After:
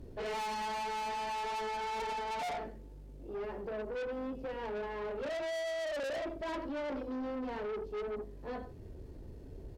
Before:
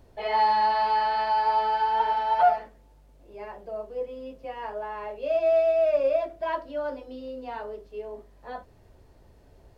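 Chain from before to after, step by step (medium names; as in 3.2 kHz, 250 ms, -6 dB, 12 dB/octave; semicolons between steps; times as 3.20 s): resonant low shelf 530 Hz +9.5 dB, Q 1.5; echo from a far wall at 16 m, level -13 dB; valve stage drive 34 dB, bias 0.3; trim -1.5 dB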